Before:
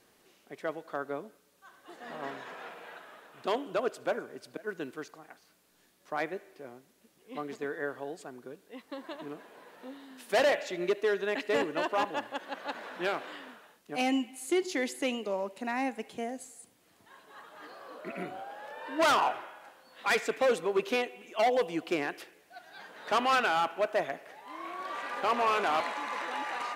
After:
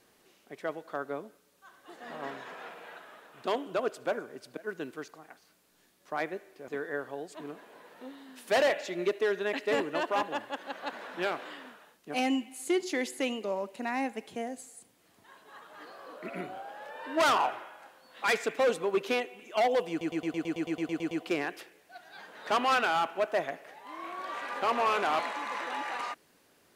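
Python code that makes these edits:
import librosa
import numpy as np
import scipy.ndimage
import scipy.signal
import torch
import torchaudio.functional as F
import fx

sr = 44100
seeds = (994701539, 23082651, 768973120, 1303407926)

y = fx.edit(x, sr, fx.cut(start_s=6.68, length_s=0.89),
    fx.cut(start_s=8.24, length_s=0.93),
    fx.stutter(start_s=21.72, slice_s=0.11, count=12), tone=tone)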